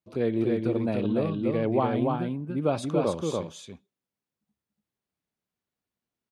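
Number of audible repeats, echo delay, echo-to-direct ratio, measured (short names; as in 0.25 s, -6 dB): 1, 0.288 s, -3.0 dB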